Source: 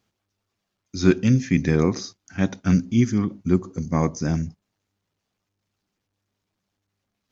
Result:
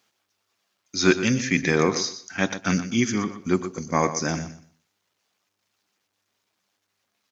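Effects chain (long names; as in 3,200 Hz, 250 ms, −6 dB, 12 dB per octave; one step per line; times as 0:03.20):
high-pass filter 880 Hz 6 dB per octave
repeating echo 122 ms, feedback 20%, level −12 dB
level +8 dB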